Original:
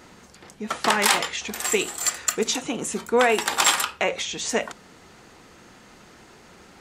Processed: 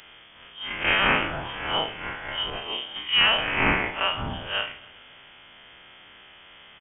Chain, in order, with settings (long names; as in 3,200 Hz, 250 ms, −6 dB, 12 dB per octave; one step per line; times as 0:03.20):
spectrum smeared in time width 94 ms
high-shelf EQ 2,100 Hz +8 dB
repeating echo 135 ms, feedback 60%, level −21 dB
voice inversion scrambler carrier 3,400 Hz
0:02.50–0:02.96: multiband upward and downward expander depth 100%